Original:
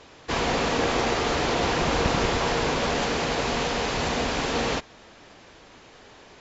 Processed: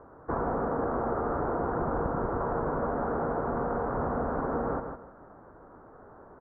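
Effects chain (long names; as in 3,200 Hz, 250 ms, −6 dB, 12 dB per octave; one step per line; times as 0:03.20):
elliptic low-pass filter 1,400 Hz, stop band 50 dB
repeating echo 157 ms, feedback 21%, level −10 dB
downward compressor, threshold −26 dBFS, peak gain reduction 7.5 dB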